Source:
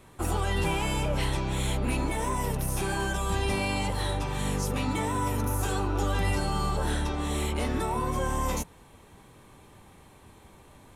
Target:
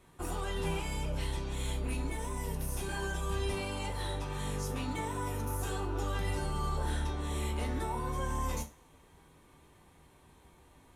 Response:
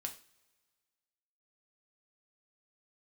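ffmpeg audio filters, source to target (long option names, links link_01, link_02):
-filter_complex "[0:a]asettb=1/sr,asplit=3[link_01][link_02][link_03];[link_01]atrim=end=0.804[link_04];[link_02]atrim=start=0.8:end=2.89,asetpts=PTS-STARTPTS,afade=type=in:duration=0.004:curve=qsin,afade=type=out:start_time=2.086:duration=0.004:curve=qsin,acrossover=split=350|3000[link_05][link_06][link_07];[link_06]acompressor=threshold=-38dB:ratio=2[link_08];[link_05][link_08][link_07]amix=inputs=3:normalize=0[link_09];[link_03]atrim=start=2.886[link_10];[link_04][link_09]acrossfade=duration=0.004:curve1=hsin:curve2=qsin[link_11];[link_11][link_10]acrossfade=duration=0.004:curve1=qsin:curve2=hsin[link_12];[1:a]atrim=start_sample=2205,asetrate=57330,aresample=44100[link_13];[link_12][link_13]afir=irnorm=-1:irlink=0,volume=-3dB"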